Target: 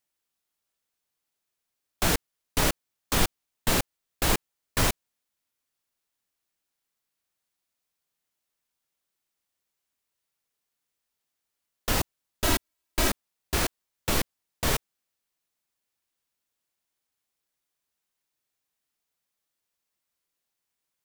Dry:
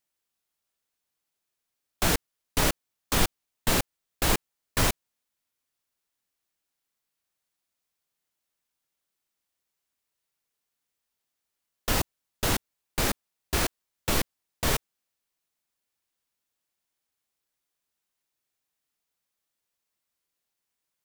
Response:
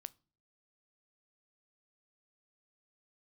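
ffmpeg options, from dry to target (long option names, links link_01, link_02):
-filter_complex "[0:a]asettb=1/sr,asplit=3[link_01][link_02][link_03];[link_01]atrim=end=12.444[link_04];[link_02]atrim=start=12.44:end=13.09,asetpts=PTS-STARTPTS,afade=type=in:duration=0.004:curve=qsin,afade=type=out:start_time=0.646:duration=0.004:curve=qsin,aecho=1:1:3.1:0.69,atrim=end_sample=28665[link_05];[link_03]atrim=start=13.086[link_06];[link_04][link_05]acrossfade=duration=0.004:curve1=hsin:curve2=qsin[link_07];[link_07][link_06]acrossfade=duration=0.004:curve1=qsin:curve2=hsin"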